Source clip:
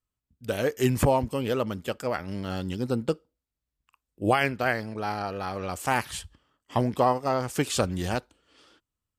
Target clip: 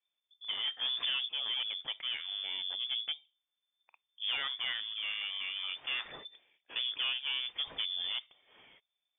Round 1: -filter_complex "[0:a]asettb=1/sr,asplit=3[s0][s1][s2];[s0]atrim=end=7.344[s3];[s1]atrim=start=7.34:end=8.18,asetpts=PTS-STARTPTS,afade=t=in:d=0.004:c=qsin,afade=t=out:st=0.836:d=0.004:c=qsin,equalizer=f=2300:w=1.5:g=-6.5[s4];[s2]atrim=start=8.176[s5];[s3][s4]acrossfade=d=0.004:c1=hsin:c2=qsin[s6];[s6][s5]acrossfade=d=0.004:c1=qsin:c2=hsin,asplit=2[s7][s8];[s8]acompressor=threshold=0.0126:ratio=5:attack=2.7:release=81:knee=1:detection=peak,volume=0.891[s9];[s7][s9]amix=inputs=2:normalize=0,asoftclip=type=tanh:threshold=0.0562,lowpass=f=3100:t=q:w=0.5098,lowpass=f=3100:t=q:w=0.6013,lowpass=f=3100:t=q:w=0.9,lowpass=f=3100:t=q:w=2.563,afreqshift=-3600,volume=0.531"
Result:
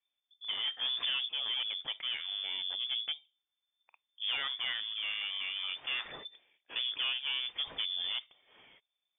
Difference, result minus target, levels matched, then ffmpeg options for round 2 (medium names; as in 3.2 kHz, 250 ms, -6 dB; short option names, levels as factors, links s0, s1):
compression: peak gain reduction -7 dB
-filter_complex "[0:a]asettb=1/sr,asplit=3[s0][s1][s2];[s0]atrim=end=7.344[s3];[s1]atrim=start=7.34:end=8.18,asetpts=PTS-STARTPTS,afade=t=in:d=0.004:c=qsin,afade=t=out:st=0.836:d=0.004:c=qsin,equalizer=f=2300:w=1.5:g=-6.5[s4];[s2]atrim=start=8.176[s5];[s3][s4]acrossfade=d=0.004:c1=hsin:c2=qsin[s6];[s6][s5]acrossfade=d=0.004:c1=qsin:c2=hsin,asplit=2[s7][s8];[s8]acompressor=threshold=0.00447:ratio=5:attack=2.7:release=81:knee=1:detection=peak,volume=0.891[s9];[s7][s9]amix=inputs=2:normalize=0,asoftclip=type=tanh:threshold=0.0562,lowpass=f=3100:t=q:w=0.5098,lowpass=f=3100:t=q:w=0.6013,lowpass=f=3100:t=q:w=0.9,lowpass=f=3100:t=q:w=2.563,afreqshift=-3600,volume=0.531"